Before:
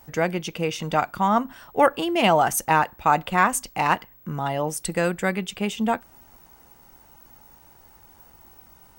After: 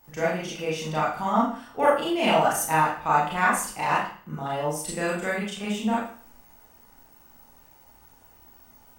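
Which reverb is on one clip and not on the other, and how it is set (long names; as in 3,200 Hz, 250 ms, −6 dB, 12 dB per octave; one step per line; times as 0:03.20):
four-comb reverb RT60 0.47 s, combs from 26 ms, DRR −6.5 dB
level −9.5 dB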